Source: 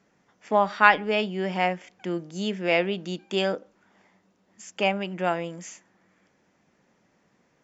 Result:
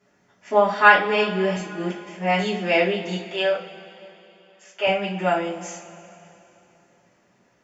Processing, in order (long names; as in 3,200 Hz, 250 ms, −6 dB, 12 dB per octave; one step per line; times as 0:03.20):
0:01.56–0:02.39: reverse
0:03.18–0:04.87: three-way crossover with the lows and the highs turned down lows −24 dB, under 460 Hz, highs −15 dB, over 4,100 Hz
convolution reverb, pre-delay 3 ms, DRR −8.5 dB
level −5 dB